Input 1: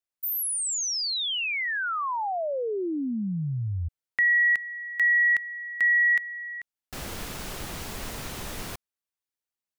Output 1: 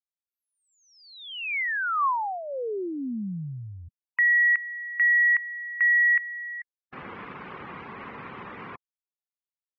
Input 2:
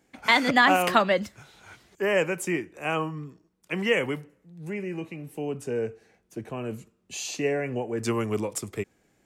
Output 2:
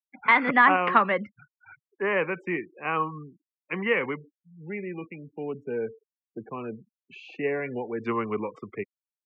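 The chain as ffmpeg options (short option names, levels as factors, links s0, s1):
-af "afftfilt=real='re*gte(hypot(re,im),0.0112)':imag='im*gte(hypot(re,im),0.0112)':win_size=1024:overlap=0.75,highpass=180,equalizer=f=310:t=q:w=4:g=-3,equalizer=f=640:t=q:w=4:g=-8,equalizer=f=1100:t=q:w=4:g=7,equalizer=f=2200:t=q:w=4:g=3,lowpass=f=2400:w=0.5412,lowpass=f=2400:w=1.3066"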